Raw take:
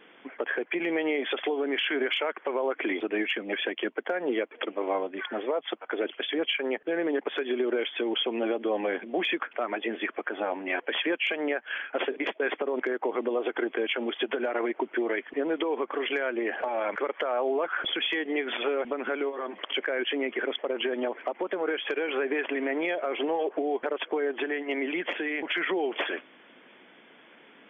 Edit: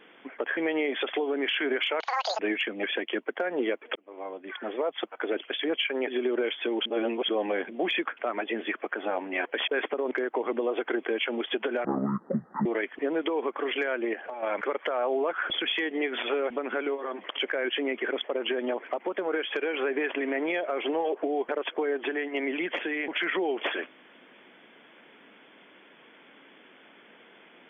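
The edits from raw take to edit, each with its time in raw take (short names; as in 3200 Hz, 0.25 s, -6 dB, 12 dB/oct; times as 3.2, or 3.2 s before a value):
0.57–0.87 cut
2.3–3.09 speed 200%
4.65–5.56 fade in
6.77–7.42 cut
8.2–8.63 reverse
11.02–12.36 cut
14.53–15 speed 58%
16.48–16.77 gain -7.5 dB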